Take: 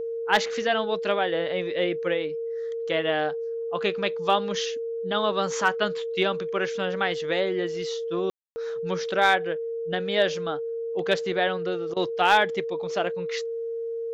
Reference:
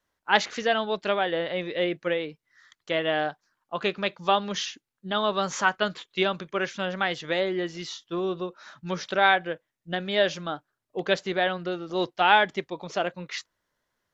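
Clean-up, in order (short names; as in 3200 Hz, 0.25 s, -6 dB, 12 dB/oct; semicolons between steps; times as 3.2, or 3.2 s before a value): clip repair -9.5 dBFS; notch 460 Hz, Q 30; room tone fill 8.3–8.56; interpolate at 11.94, 23 ms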